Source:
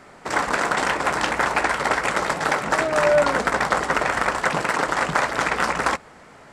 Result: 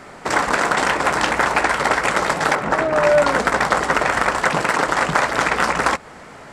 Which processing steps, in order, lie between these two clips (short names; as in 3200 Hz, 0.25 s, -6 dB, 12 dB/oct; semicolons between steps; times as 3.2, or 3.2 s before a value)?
2.55–3.04 high shelf 2800 Hz -11 dB; in parallel at +2 dB: compressor, threshold -26 dBFS, peak gain reduction 12 dB